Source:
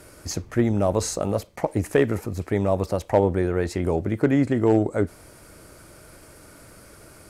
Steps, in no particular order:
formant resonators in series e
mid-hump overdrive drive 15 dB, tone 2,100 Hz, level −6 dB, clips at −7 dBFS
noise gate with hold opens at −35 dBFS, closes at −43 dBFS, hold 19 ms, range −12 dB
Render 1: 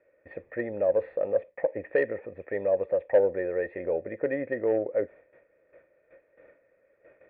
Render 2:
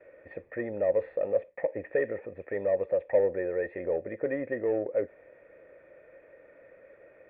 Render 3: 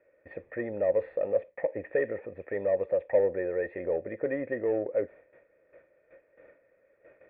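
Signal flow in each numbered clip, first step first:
noise gate with hold, then formant resonators in series, then mid-hump overdrive
mid-hump overdrive, then noise gate with hold, then formant resonators in series
noise gate with hold, then mid-hump overdrive, then formant resonators in series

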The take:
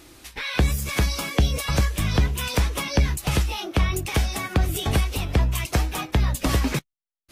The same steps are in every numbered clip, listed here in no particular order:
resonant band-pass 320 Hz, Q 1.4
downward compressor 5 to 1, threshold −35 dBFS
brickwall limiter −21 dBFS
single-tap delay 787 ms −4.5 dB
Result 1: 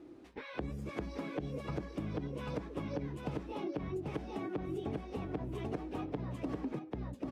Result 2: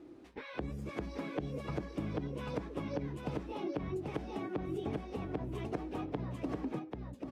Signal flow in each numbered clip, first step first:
resonant band-pass, then brickwall limiter, then single-tap delay, then downward compressor
resonant band-pass, then brickwall limiter, then downward compressor, then single-tap delay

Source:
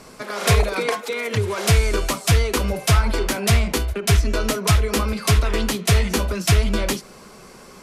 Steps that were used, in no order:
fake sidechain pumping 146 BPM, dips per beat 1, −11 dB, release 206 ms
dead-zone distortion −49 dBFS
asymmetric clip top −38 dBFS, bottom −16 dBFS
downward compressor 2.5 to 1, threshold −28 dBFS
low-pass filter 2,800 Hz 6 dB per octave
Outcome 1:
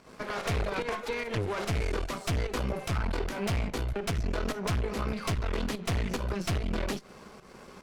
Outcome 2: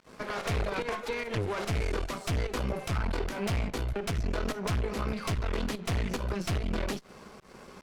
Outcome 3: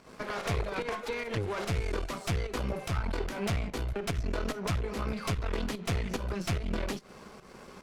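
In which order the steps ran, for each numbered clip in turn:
dead-zone distortion, then fake sidechain pumping, then asymmetric clip, then low-pass filter, then downward compressor
fake sidechain pumping, then dead-zone distortion, then asymmetric clip, then downward compressor, then low-pass filter
dead-zone distortion, then fake sidechain pumping, then downward compressor, then asymmetric clip, then low-pass filter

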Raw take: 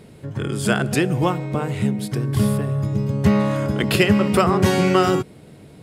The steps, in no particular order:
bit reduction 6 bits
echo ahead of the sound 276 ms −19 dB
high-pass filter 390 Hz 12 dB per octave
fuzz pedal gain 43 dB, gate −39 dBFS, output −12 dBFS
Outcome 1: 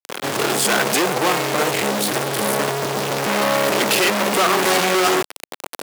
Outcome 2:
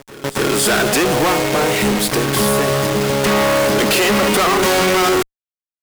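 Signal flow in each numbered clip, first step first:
bit reduction, then echo ahead of the sound, then fuzz pedal, then high-pass filter
high-pass filter, then bit reduction, then fuzz pedal, then echo ahead of the sound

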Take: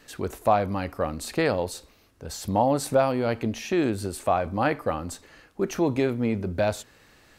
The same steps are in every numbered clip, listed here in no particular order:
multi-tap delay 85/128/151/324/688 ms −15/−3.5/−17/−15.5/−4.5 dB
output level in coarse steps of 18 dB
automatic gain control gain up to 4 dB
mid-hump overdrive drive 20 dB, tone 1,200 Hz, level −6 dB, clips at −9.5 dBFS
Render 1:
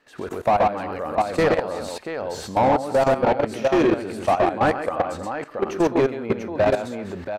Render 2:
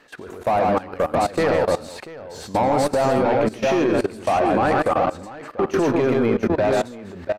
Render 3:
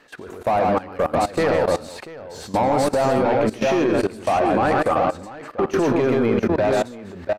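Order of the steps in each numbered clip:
multi-tap delay, then automatic gain control, then output level in coarse steps, then mid-hump overdrive
mid-hump overdrive, then multi-tap delay, then automatic gain control, then output level in coarse steps
mid-hump overdrive, then automatic gain control, then multi-tap delay, then output level in coarse steps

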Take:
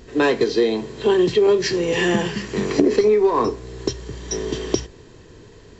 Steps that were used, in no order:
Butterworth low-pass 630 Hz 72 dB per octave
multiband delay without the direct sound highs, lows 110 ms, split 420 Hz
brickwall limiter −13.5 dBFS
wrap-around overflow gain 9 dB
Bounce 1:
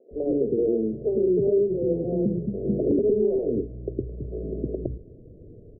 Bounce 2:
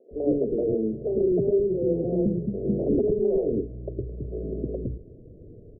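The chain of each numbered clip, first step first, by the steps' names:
multiband delay without the direct sound, then wrap-around overflow, then brickwall limiter, then Butterworth low-pass
wrap-around overflow, then Butterworth low-pass, then brickwall limiter, then multiband delay without the direct sound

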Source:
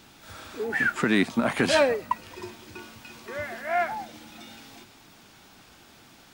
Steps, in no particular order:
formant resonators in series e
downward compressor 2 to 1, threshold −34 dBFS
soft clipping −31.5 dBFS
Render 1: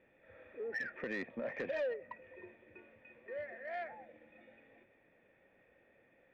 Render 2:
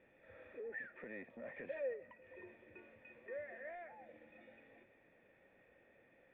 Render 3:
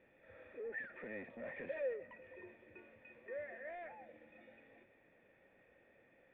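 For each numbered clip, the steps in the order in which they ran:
formant resonators in series, then downward compressor, then soft clipping
downward compressor, then soft clipping, then formant resonators in series
soft clipping, then formant resonators in series, then downward compressor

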